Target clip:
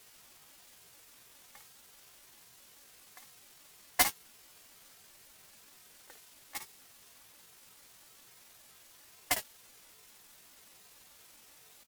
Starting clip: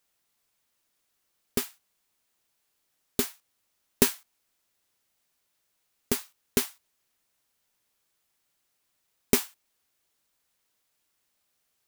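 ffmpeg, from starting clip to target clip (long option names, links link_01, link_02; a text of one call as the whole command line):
ffmpeg -i in.wav -filter_complex "[0:a]aeval=exprs='val(0)+0.5*0.0891*sgn(val(0))':channel_layout=same,lowpass=10000,asetrate=74167,aresample=44100,atempo=0.594604,agate=range=-34dB:threshold=-18dB:ratio=16:detection=peak,aecho=1:1:3.5:0.94,asplit=2[link_01][link_02];[link_02]aecho=0:1:54|71:0.355|0.15[link_03];[link_01][link_03]amix=inputs=2:normalize=0,aeval=exprs='val(0)*sin(2*PI*1300*n/s+1300*0.2/1.2*sin(2*PI*1.2*n/s))':channel_layout=same,volume=6.5dB" out.wav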